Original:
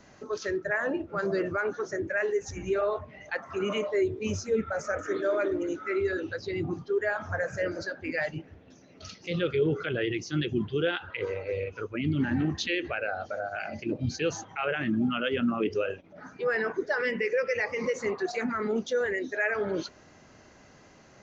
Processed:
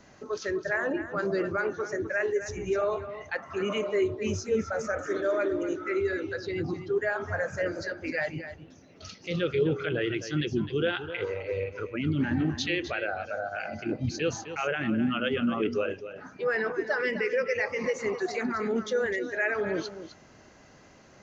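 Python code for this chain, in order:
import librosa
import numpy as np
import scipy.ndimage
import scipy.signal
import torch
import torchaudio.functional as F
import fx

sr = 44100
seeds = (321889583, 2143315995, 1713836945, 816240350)

y = x + 10.0 ** (-11.5 / 20.0) * np.pad(x, (int(257 * sr / 1000.0), 0))[:len(x)]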